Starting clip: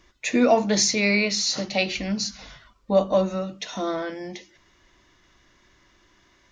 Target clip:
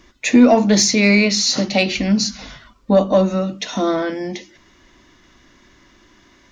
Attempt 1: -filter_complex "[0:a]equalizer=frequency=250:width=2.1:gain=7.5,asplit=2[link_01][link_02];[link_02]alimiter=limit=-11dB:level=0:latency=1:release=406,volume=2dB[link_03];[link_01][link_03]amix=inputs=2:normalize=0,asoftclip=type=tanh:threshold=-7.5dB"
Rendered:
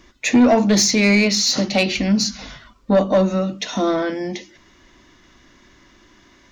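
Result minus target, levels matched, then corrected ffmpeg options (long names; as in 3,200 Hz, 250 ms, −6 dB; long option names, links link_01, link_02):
soft clipping: distortion +10 dB
-filter_complex "[0:a]equalizer=frequency=250:width=2.1:gain=7.5,asplit=2[link_01][link_02];[link_02]alimiter=limit=-11dB:level=0:latency=1:release=406,volume=2dB[link_03];[link_01][link_03]amix=inputs=2:normalize=0,asoftclip=type=tanh:threshold=-0.5dB"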